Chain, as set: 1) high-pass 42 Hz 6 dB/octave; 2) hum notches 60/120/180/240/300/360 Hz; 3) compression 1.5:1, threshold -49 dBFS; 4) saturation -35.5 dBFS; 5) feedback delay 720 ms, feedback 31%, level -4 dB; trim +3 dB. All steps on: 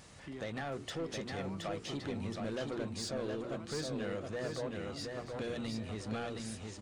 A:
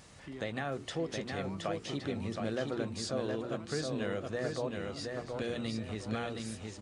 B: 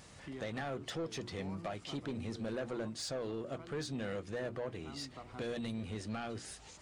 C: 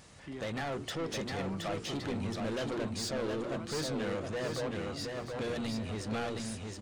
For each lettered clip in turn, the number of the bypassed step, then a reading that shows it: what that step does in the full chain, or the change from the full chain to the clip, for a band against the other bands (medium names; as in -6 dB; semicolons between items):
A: 4, distortion -12 dB; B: 5, momentary loudness spread change +1 LU; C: 3, mean gain reduction 6.0 dB